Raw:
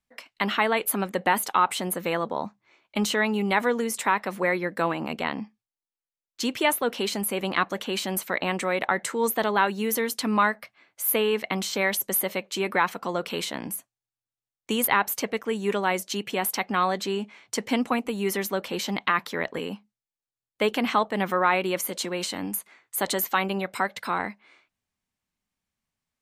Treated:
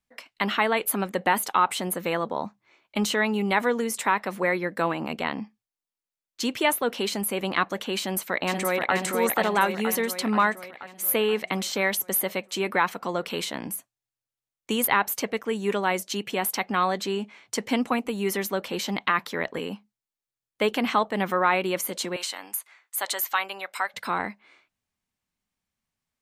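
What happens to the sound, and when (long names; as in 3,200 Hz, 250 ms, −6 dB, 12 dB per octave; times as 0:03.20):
0:07.99–0:08.94: delay throw 480 ms, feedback 60%, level −3.5 dB
0:22.16–0:23.94: high-pass filter 800 Hz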